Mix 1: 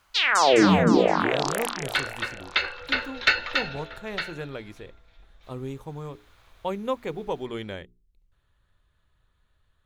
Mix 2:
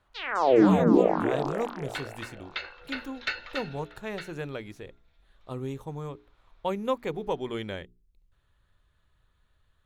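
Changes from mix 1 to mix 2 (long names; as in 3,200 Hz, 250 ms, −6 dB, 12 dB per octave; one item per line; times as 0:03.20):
first sound: add resonant band-pass 340 Hz, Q 0.67
second sound −11.0 dB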